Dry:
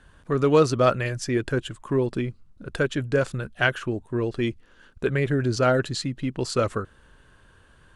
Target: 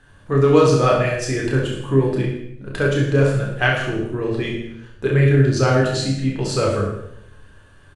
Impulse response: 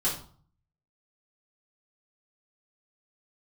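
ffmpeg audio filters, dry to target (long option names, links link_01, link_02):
-filter_complex "[0:a]aecho=1:1:30|66|109.2|161|223.2:0.631|0.398|0.251|0.158|0.1,asplit=2[link_01][link_02];[1:a]atrim=start_sample=2205,asetrate=24696,aresample=44100[link_03];[link_02][link_03]afir=irnorm=-1:irlink=0,volume=-10dB[link_04];[link_01][link_04]amix=inputs=2:normalize=0,volume=-2.5dB"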